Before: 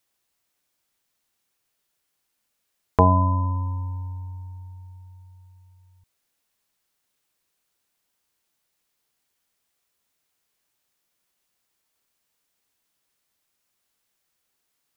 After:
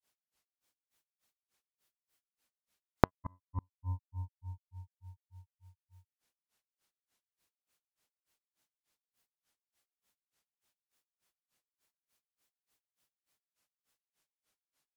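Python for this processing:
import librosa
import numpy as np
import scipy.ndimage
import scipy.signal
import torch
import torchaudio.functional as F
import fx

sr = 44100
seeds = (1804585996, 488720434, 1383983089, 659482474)

y = fx.cheby_harmonics(x, sr, harmonics=(2, 6), levels_db=(-8, -25), full_scale_db=-2.0)
y = fx.granulator(y, sr, seeds[0], grain_ms=172.0, per_s=3.4, spray_ms=100.0, spread_st=0)
y = fx.gate_flip(y, sr, shuts_db=-24.0, range_db=-38)
y = y * 10.0 ** (-1.5 / 20.0)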